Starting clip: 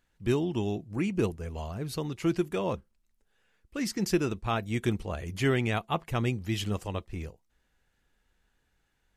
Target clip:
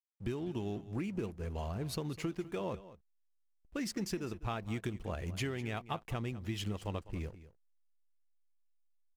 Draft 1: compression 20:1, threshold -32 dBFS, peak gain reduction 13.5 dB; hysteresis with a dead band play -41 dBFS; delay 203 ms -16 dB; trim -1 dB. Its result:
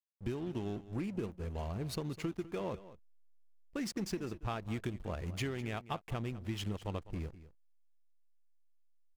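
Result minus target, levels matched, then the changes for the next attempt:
hysteresis with a dead band: distortion +8 dB
change: hysteresis with a dead band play -50 dBFS

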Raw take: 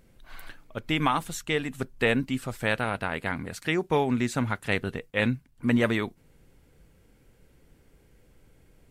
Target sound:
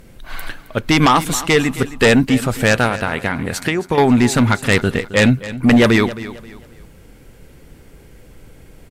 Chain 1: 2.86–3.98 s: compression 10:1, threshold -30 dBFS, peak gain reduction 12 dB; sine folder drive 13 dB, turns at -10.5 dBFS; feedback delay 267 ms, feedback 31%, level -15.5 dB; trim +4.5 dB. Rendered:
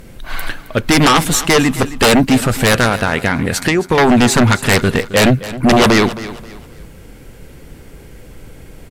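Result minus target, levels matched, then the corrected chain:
sine folder: distortion +11 dB
2.86–3.98 s: compression 10:1, threshold -30 dBFS, peak gain reduction 12 dB; sine folder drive 7 dB, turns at -10.5 dBFS; feedback delay 267 ms, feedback 31%, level -15.5 dB; trim +4.5 dB

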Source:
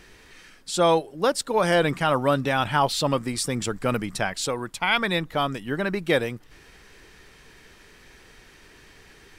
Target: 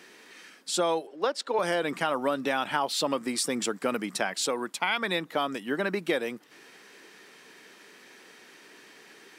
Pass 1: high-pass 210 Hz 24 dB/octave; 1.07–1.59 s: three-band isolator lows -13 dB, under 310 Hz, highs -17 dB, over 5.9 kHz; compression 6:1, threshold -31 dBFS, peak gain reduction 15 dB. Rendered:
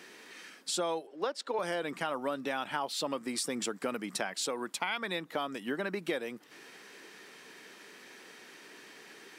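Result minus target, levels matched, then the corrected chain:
compression: peak gain reduction +6.5 dB
high-pass 210 Hz 24 dB/octave; 1.07–1.59 s: three-band isolator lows -13 dB, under 310 Hz, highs -17 dB, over 5.9 kHz; compression 6:1, threshold -23 dBFS, peak gain reduction 8 dB

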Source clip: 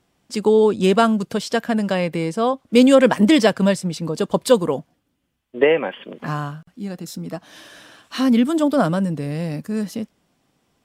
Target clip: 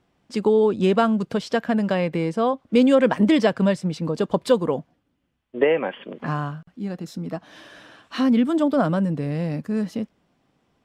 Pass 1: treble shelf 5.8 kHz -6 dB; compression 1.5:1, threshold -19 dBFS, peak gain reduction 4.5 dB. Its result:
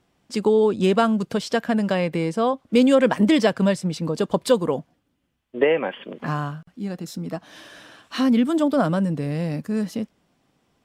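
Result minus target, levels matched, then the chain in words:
8 kHz band +5.5 dB
treble shelf 5.8 kHz -15.5 dB; compression 1.5:1, threshold -19 dBFS, peak gain reduction 4.5 dB

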